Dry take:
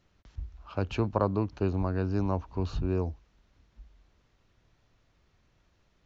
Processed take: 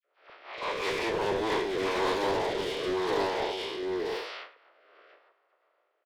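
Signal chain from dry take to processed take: time blur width 0.244 s; gate with hold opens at -56 dBFS; high shelf 2100 Hz +9 dB; on a send: echo 0.915 s -6 dB; on the sum: transient shaper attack -12 dB, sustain +12 dB; steep high-pass 390 Hz 36 dB/oct; tilt +1.5 dB/oct; overdrive pedal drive 33 dB, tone 3900 Hz, clips at -19 dBFS; dispersion lows, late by 46 ms, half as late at 2100 Hz; formant shift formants -4 st; low-pass opened by the level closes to 1000 Hz, open at -27.5 dBFS; rotary speaker horn 5.5 Hz, later 0.85 Hz, at 1

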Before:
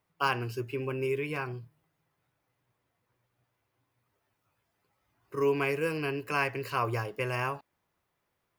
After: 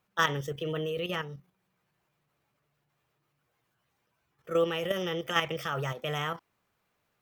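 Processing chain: level quantiser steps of 9 dB; varispeed +19%; gain +4 dB

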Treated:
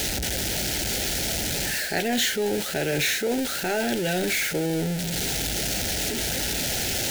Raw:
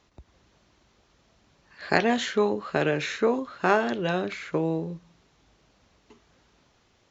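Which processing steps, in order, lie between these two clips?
zero-crossing step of -23.5 dBFS; Butterworth band-stop 1100 Hz, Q 1.8; reverse; compressor 6:1, threshold -22 dBFS, peak gain reduction 8 dB; reverse; high shelf 4200 Hz +8.5 dB

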